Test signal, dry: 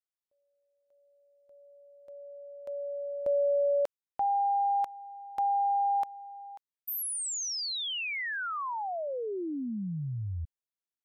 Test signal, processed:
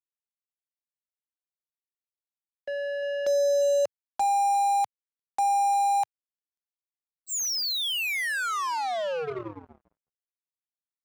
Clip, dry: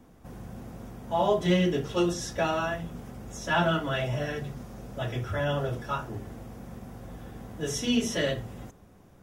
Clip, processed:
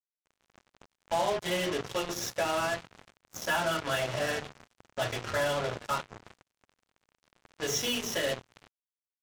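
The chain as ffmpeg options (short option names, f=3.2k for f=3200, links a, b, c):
-filter_complex "[0:a]aresample=16000,aresample=44100,equalizer=f=160:t=o:w=1.4:g=-7,acrossover=split=110|430|3200[a][b][c][d];[a]acompressor=threshold=-56dB:ratio=16:attack=10:release=692[e];[e][b][c][d]amix=inputs=4:normalize=0,alimiter=limit=-23.5dB:level=0:latency=1:release=342,bandreject=f=50:t=h:w=6,bandreject=f=100:t=h:w=6,bandreject=f=150:t=h:w=6,bandreject=f=200:t=h:w=6,bandreject=f=250:t=h:w=6,bandreject=f=300:t=h:w=6,bandreject=f=350:t=h:w=6,bandreject=f=400:t=h:w=6,bandreject=f=450:t=h:w=6,acrossover=split=390|2300[f][g][h];[f]acompressor=threshold=-44dB:ratio=4:attack=0.49:release=31:knee=2.83:detection=peak[i];[i][g][h]amix=inputs=3:normalize=0,asplit=2[j][k];[k]adelay=350,highpass=300,lowpass=3.4k,asoftclip=type=hard:threshold=-31dB,volume=-17dB[l];[j][l]amix=inputs=2:normalize=0,acrusher=bits=5:mix=0:aa=0.5,adynamicequalizer=threshold=0.00141:dfrequency=110:dqfactor=1.3:tfrequency=110:tqfactor=1.3:attack=5:release=100:ratio=0.375:range=2.5:mode=boostabove:tftype=bell,volume=4dB"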